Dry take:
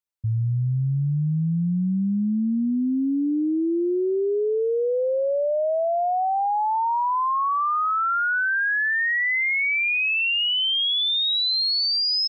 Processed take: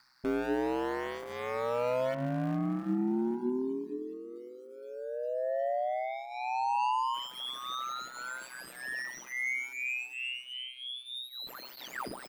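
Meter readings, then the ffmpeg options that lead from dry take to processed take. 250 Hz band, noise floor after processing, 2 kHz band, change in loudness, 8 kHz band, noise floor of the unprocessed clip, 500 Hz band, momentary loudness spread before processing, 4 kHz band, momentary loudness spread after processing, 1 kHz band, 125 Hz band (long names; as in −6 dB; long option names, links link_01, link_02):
−10.5 dB, −49 dBFS, −15.0 dB, −12.5 dB, can't be measured, −23 dBFS, −9.0 dB, 4 LU, −18.5 dB, 11 LU, −10.5 dB, −17.0 dB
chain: -filter_complex "[0:a]firequalizer=gain_entry='entry(200,0);entry(390,-26);entry(890,-2);entry(1600,7);entry(3100,-20);entry(4600,12);entry(6600,-12)':delay=0.05:min_phase=1,asplit=2[link_01][link_02];[link_02]acrusher=bits=4:mode=log:mix=0:aa=0.000001,volume=-7dB[link_03];[link_01][link_03]amix=inputs=2:normalize=0,aeval=exprs='(mod(7.08*val(0)+1,2)-1)/7.08':channel_layout=same,asplit=2[link_04][link_05];[link_05]aecho=0:1:404|808|1212:0.0841|0.0337|0.0135[link_06];[link_04][link_06]amix=inputs=2:normalize=0,asoftclip=type=tanh:threshold=-33.5dB,highpass=120,acrossover=split=3000[link_07][link_08];[link_08]acompressor=threshold=-48dB:ratio=4:attack=1:release=60[link_09];[link_07][link_09]amix=inputs=2:normalize=0,highshelf=frequency=3100:gain=-9,aecho=1:1:3.3:0.69,acompressor=mode=upward:threshold=-47dB:ratio=2.5,bandreject=frequency=50:width_type=h:width=6,bandreject=frequency=100:width_type=h:width=6,bandreject=frequency=150:width_type=h:width=6,bandreject=frequency=200:width_type=h:width=6,bandreject=frequency=250:width_type=h:width=6,bandreject=frequency=300:width_type=h:width=6,bandreject=frequency=350:width_type=h:width=6,aeval=exprs='val(0)*sin(2*PI*63*n/s)':channel_layout=same,volume=5dB"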